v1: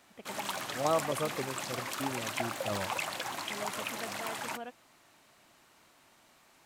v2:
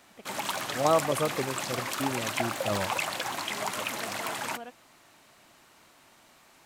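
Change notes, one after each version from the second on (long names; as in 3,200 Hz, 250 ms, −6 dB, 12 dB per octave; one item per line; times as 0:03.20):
second voice +5.5 dB
background +4.5 dB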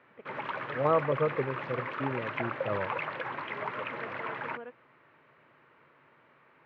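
master: add loudspeaker in its box 120–2,200 Hz, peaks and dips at 140 Hz +6 dB, 200 Hz −8 dB, 300 Hz −4 dB, 470 Hz +5 dB, 730 Hz −10 dB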